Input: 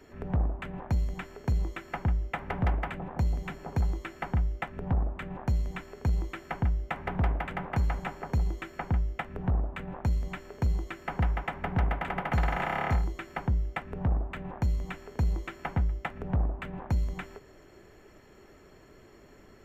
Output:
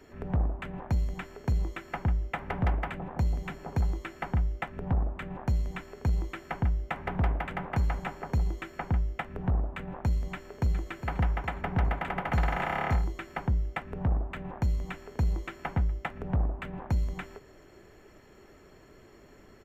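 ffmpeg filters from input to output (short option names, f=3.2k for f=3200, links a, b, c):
-filter_complex "[0:a]asplit=2[a][b];[b]afade=t=in:st=10.33:d=0.01,afade=t=out:st=10.79:d=0.01,aecho=0:1:410|820|1230|1640|2050|2460|2870:0.354813|0.212888|0.127733|0.0766397|0.0459838|0.0275903|0.0165542[c];[a][c]amix=inputs=2:normalize=0"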